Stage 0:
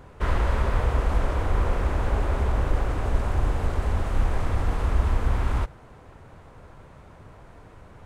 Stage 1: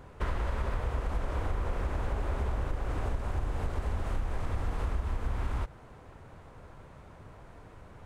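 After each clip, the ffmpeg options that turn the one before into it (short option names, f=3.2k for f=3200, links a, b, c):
-af "acompressor=threshold=-24dB:ratio=6,volume=-3dB"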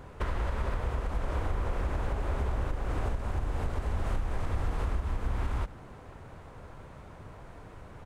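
-filter_complex "[0:a]alimiter=limit=-24dB:level=0:latency=1:release=457,asplit=6[a][b][c][d][e][f];[b]adelay=83,afreqshift=-78,volume=-21dB[g];[c]adelay=166,afreqshift=-156,volume=-25dB[h];[d]adelay=249,afreqshift=-234,volume=-29dB[i];[e]adelay=332,afreqshift=-312,volume=-33dB[j];[f]adelay=415,afreqshift=-390,volume=-37.1dB[k];[a][g][h][i][j][k]amix=inputs=6:normalize=0,volume=3dB"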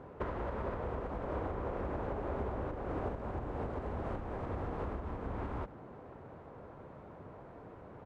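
-af "bandpass=f=410:t=q:w=0.6:csg=0,volume=1.5dB"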